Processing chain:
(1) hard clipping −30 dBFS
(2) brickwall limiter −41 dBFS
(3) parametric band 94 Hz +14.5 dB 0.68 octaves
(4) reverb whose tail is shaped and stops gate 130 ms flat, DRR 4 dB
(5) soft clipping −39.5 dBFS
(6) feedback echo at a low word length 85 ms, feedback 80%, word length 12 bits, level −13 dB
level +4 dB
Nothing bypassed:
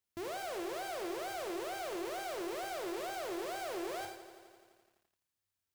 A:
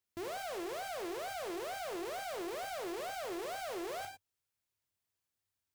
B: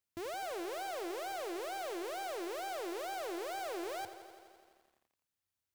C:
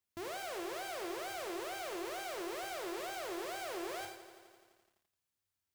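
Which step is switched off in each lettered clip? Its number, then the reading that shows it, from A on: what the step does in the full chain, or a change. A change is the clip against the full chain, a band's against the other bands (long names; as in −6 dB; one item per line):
6, change in crest factor −3.5 dB
4, 1 kHz band +1.5 dB
1, distortion level −15 dB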